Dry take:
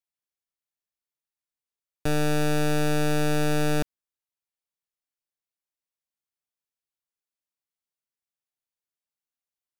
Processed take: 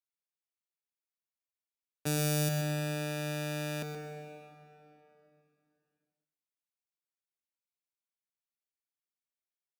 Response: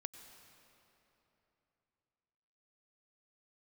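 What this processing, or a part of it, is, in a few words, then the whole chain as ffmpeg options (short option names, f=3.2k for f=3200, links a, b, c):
PA in a hall: -filter_complex "[0:a]highpass=73,asettb=1/sr,asplit=3[a][b][c];[a]atrim=end=2.064[d];[b]atrim=start=2.06:end=2.49,asetpts=PTS-STARTPTS,afade=t=in:d=0.004:c=qsin,afade=t=out:st=0.426:d=0.004:c=qsin,bass=f=250:g=12,treble=f=4k:g=13[e];[c]atrim=start=2.486[f];[d][e]acrossfade=d=0.004:c1=hsin:c2=qsin[g];[g][f]acrossfade=d=0.004:c1=qsin:c2=hsin,highpass=f=200:p=1,equalizer=f=2.3k:t=o:w=0.23:g=4,aecho=1:1:125:0.335[h];[1:a]atrim=start_sample=2205[i];[h][i]afir=irnorm=-1:irlink=0,volume=-5dB"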